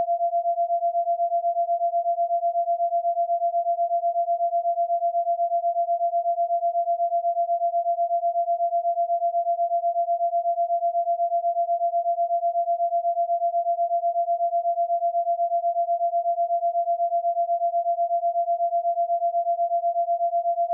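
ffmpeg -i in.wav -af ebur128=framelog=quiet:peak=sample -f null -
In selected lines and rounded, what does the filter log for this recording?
Integrated loudness:
  I:         -23.9 LUFS
  Threshold: -33.9 LUFS
Loudness range:
  LRA:         0.1 LU
  Threshold: -43.9 LUFS
  LRA low:   -24.0 LUFS
  LRA high:  -23.9 LUFS
Sample peak:
  Peak:      -17.4 dBFS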